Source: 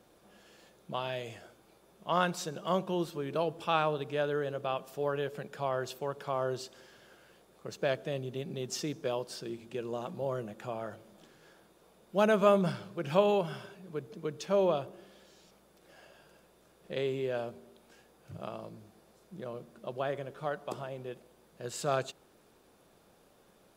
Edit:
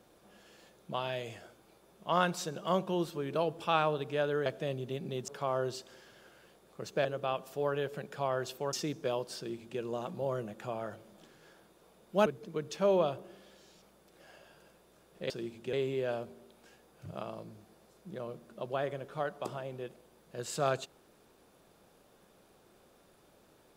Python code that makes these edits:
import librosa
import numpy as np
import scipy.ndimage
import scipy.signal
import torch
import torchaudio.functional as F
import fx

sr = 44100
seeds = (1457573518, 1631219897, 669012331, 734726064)

y = fx.edit(x, sr, fx.swap(start_s=4.46, length_s=1.68, other_s=7.91, other_length_s=0.82),
    fx.duplicate(start_s=9.37, length_s=0.43, to_s=16.99),
    fx.cut(start_s=12.26, length_s=1.69), tone=tone)